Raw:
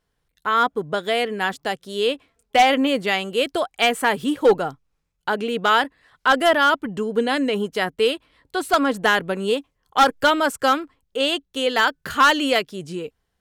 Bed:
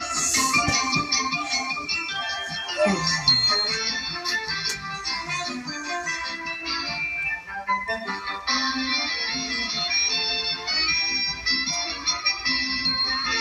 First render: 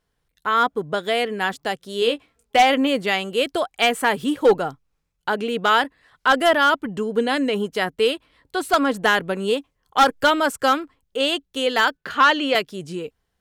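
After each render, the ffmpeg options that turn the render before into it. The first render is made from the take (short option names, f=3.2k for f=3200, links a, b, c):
-filter_complex "[0:a]asettb=1/sr,asplit=3[a][b][c];[a]atrim=end=2.004[d];[b]atrim=start=2:end=2.57,asetpts=PTS-STARTPTS,afade=t=in:d=0.004:c=qsin,afade=t=out:st=0.566:d=0.004:c=qsin,asplit=2[e][f];[f]adelay=17,volume=-6.5dB[g];[e][g]amix=inputs=2:normalize=0,atrim=end_sample=25137[h];[c]atrim=start=2.566[i];[d][h]acrossfade=d=0.004:c1=hsin:c2=qsin[j];[j][i]acrossfade=d=0.004:c1=qsin:c2=hsin,asettb=1/sr,asplit=3[k][l][m];[k]atrim=end=11.974[n];[l]atrim=start=11.97:end=12.55,asetpts=PTS-STARTPTS,afade=t=in:d=0.004:c=qsin,afade=t=out:st=0.576:d=0.004:c=qsin,acrossover=split=210 5000:gain=0.224 1 0.178[o][p][q];[o][p][q]amix=inputs=3:normalize=0[r];[m]atrim=start=12.546[s];[n][r]acrossfade=d=0.004:c1=hsin:c2=qsin[t];[t][s]acrossfade=d=0.004:c1=qsin:c2=hsin"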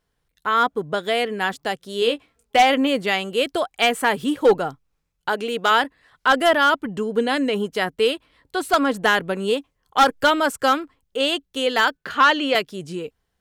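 -filter_complex "[0:a]asettb=1/sr,asplit=3[a][b][c];[a]atrim=end=5.294[d];[b]atrim=start=5.29:end=5.71,asetpts=PTS-STARTPTS,afade=t=in:d=0.004:c=qsin,afade=t=out:st=0.416:d=0.004:c=qsin,bass=f=250:g=-7,treble=f=4k:g=4[e];[c]atrim=start=5.706[f];[d][e]acrossfade=d=0.004:c1=hsin:c2=qsin[g];[g][f]acrossfade=d=0.004:c1=qsin:c2=hsin"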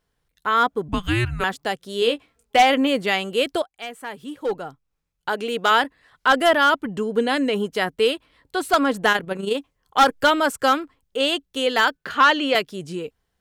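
-filter_complex "[0:a]asettb=1/sr,asplit=3[a][b][c];[a]atrim=end=0.884[d];[b]atrim=start=0.88:end=1.44,asetpts=PTS-STARTPTS,afade=t=in:d=0.004:c=qsin,afade=t=out:st=0.556:d=0.004:c=qsin,afreqshift=-360[e];[c]atrim=start=1.436[f];[d][e]acrossfade=d=0.004:c1=hsin:c2=qsin[g];[g][f]acrossfade=d=0.004:c1=qsin:c2=hsin,asplit=3[h][i][j];[h]afade=t=out:st=9.11:d=0.02[k];[i]tremolo=f=25:d=0.571,afade=t=in:st=9.11:d=0.02,afade=t=out:st=9.54:d=0.02[l];[j]afade=t=in:st=9.54:d=0.02[m];[k][l][m]amix=inputs=3:normalize=0,asplit=2[n][o];[n]atrim=end=3.62,asetpts=PTS-STARTPTS,afade=t=out:st=3.616:d=0.004:c=hsin:silence=0.158489[p];[o]atrim=start=3.62,asetpts=PTS-STARTPTS,afade=t=in:d=1.91:c=qua:silence=0.158489[q];[p][q]concat=n=2:v=0:a=1"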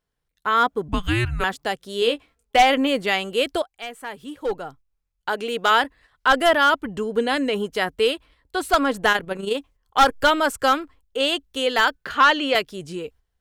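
-af "asubboost=boost=4:cutoff=75,agate=range=-7dB:threshold=-47dB:ratio=16:detection=peak"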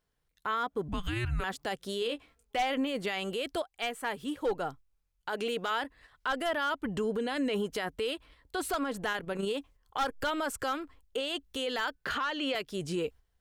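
-af "acompressor=threshold=-25dB:ratio=6,alimiter=limit=-23.5dB:level=0:latency=1:release=15"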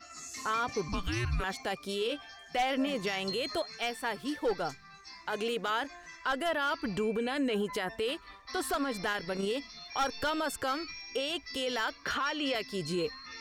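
-filter_complex "[1:a]volume=-21.5dB[a];[0:a][a]amix=inputs=2:normalize=0"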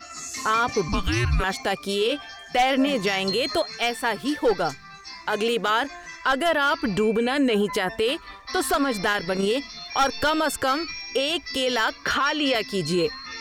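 -af "volume=9.5dB"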